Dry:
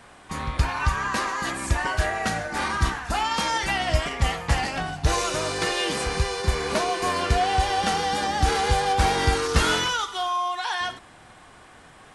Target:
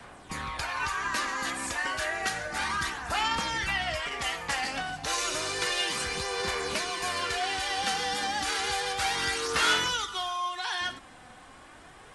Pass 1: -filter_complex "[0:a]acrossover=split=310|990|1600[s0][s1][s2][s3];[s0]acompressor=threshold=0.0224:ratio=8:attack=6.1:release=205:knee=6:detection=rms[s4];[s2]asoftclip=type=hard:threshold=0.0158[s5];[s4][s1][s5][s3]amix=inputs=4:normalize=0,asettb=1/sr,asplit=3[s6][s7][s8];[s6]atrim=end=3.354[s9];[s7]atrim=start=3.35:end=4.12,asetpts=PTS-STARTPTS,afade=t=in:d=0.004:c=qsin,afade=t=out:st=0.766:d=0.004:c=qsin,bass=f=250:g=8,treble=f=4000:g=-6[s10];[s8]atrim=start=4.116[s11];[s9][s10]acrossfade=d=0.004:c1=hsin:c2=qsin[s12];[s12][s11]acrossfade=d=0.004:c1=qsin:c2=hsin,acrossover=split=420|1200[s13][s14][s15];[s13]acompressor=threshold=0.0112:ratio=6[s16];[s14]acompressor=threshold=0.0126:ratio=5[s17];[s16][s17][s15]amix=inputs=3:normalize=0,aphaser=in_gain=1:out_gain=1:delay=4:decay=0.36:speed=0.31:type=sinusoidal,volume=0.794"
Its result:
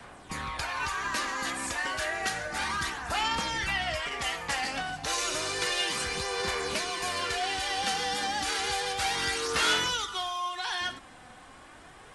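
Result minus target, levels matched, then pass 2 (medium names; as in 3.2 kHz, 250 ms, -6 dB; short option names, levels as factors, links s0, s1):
hard clipper: distortion +29 dB
-filter_complex "[0:a]acrossover=split=310|990|1600[s0][s1][s2][s3];[s0]acompressor=threshold=0.0224:ratio=8:attack=6.1:release=205:knee=6:detection=rms[s4];[s2]asoftclip=type=hard:threshold=0.0596[s5];[s4][s1][s5][s3]amix=inputs=4:normalize=0,asettb=1/sr,asplit=3[s6][s7][s8];[s6]atrim=end=3.354[s9];[s7]atrim=start=3.35:end=4.12,asetpts=PTS-STARTPTS,afade=t=in:d=0.004:c=qsin,afade=t=out:st=0.766:d=0.004:c=qsin,bass=f=250:g=8,treble=f=4000:g=-6[s10];[s8]atrim=start=4.116[s11];[s9][s10]acrossfade=d=0.004:c1=hsin:c2=qsin[s12];[s12][s11]acrossfade=d=0.004:c1=qsin:c2=hsin,acrossover=split=420|1200[s13][s14][s15];[s13]acompressor=threshold=0.0112:ratio=6[s16];[s14]acompressor=threshold=0.0126:ratio=5[s17];[s16][s17][s15]amix=inputs=3:normalize=0,aphaser=in_gain=1:out_gain=1:delay=4:decay=0.36:speed=0.31:type=sinusoidal,volume=0.794"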